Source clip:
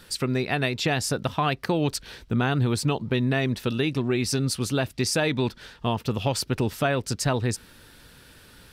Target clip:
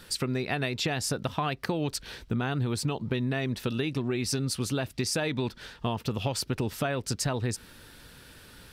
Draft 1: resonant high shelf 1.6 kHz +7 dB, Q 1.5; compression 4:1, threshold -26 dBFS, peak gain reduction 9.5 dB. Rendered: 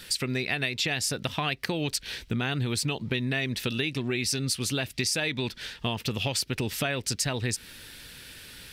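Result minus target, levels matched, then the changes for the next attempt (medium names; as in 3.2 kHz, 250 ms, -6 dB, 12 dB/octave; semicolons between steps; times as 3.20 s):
4 kHz band +3.5 dB
remove: resonant high shelf 1.6 kHz +7 dB, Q 1.5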